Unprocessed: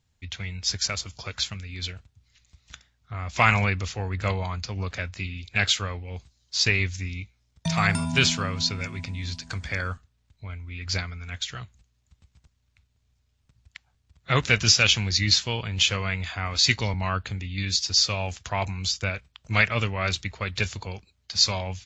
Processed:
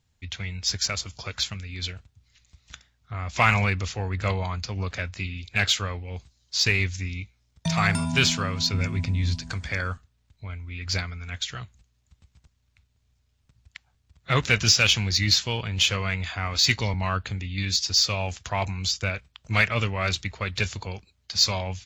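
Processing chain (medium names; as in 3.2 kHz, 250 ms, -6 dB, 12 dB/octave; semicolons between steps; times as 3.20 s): 8.73–9.52 s: bass shelf 340 Hz +8.5 dB; in parallel at -10 dB: hard clipper -21.5 dBFS, distortion -7 dB; on the sum: trim -1.5 dB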